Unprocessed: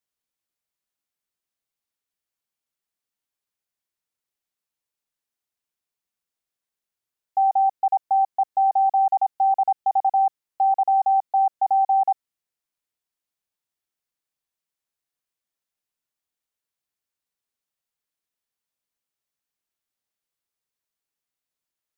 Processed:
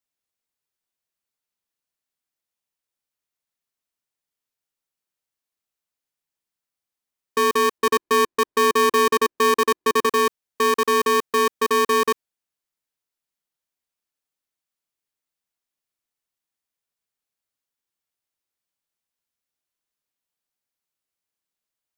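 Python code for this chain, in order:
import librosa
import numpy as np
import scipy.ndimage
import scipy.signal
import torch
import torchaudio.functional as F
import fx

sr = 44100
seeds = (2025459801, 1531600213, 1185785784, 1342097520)

y = fx.tilt_eq(x, sr, slope=-3.5, at=(7.78, 10.06))
y = y * np.sign(np.sin(2.0 * np.pi * 340.0 * np.arange(len(y)) / sr))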